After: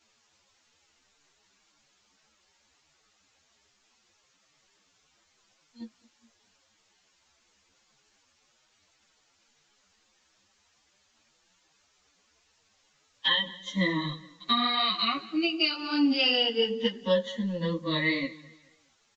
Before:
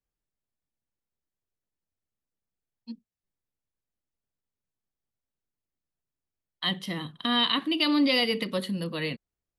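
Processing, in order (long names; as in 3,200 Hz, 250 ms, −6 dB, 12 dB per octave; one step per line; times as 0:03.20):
rippled gain that drifts along the octave scale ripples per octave 1.1, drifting +0.5 Hz, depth 18 dB
noise gate −37 dBFS, range −13 dB
transient designer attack +3 dB, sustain −5 dB
downward compressor 12 to 1, threshold −22 dBFS, peak gain reduction 8 dB
background noise white −64 dBFS
phase-vocoder stretch with locked phases 2×
on a send: repeating echo 209 ms, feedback 36%, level −21 dB
on the sum: downsampling to 16,000 Hz
string-ensemble chorus
level +4 dB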